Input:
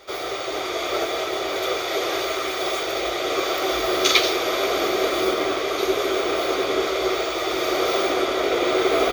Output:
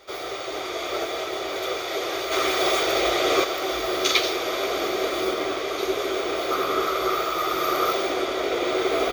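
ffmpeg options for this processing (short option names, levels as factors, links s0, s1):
-filter_complex "[0:a]asplit=3[s0][s1][s2];[s0]afade=t=out:st=2.31:d=0.02[s3];[s1]acontrast=74,afade=t=in:st=2.31:d=0.02,afade=t=out:st=3.43:d=0.02[s4];[s2]afade=t=in:st=3.43:d=0.02[s5];[s3][s4][s5]amix=inputs=3:normalize=0,asettb=1/sr,asplit=3[s6][s7][s8];[s6]atrim=end=6.514[s9];[s7]atrim=start=6.51:end=7.93,asetpts=PTS-STARTPTS,afade=t=in:d=0.004:c=qsin,afade=t=out:st=1.416:d=0.004:c=qsin,equalizer=f=160:t=o:w=0.33:g=10,equalizer=f=1250:t=o:w=0.33:g=11,equalizer=f=12500:t=o:w=0.33:g=11[s10];[s8]atrim=start=7.926[s11];[s9][s10]acrossfade=d=0.004:c1=hsin:c2=qsin[s12];[s12][s11]acrossfade=d=0.004:c1=qsin:c2=hsin,volume=0.668"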